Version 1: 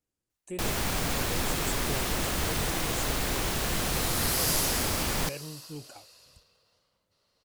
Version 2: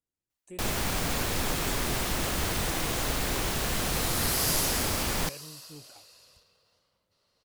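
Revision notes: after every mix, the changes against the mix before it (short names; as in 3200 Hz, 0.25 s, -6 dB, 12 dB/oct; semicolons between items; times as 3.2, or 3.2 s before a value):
speech -7.0 dB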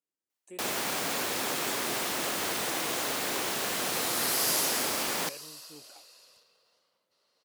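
master: add HPF 290 Hz 12 dB/oct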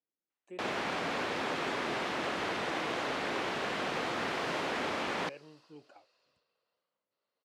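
second sound -11.0 dB; master: add LPF 2800 Hz 12 dB/oct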